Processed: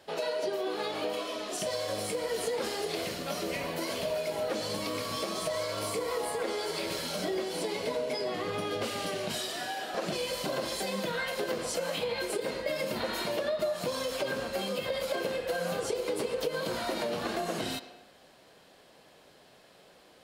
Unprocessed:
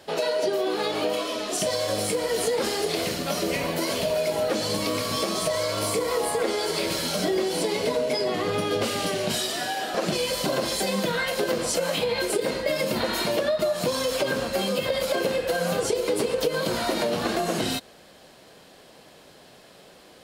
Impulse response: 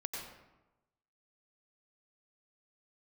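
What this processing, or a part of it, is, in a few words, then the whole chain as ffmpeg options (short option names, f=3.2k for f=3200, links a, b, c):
filtered reverb send: -filter_complex "[0:a]asplit=2[a][b];[b]highpass=340,lowpass=4.8k[c];[1:a]atrim=start_sample=2205[d];[c][d]afir=irnorm=-1:irlink=0,volume=-9dB[e];[a][e]amix=inputs=2:normalize=0,volume=-8.5dB"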